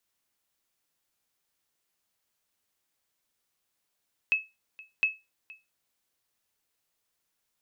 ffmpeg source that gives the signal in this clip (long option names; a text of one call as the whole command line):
ffmpeg -f lavfi -i "aevalsrc='0.15*(sin(2*PI*2590*mod(t,0.71))*exp(-6.91*mod(t,0.71)/0.23)+0.075*sin(2*PI*2590*max(mod(t,0.71)-0.47,0))*exp(-6.91*max(mod(t,0.71)-0.47,0)/0.23))':duration=1.42:sample_rate=44100" out.wav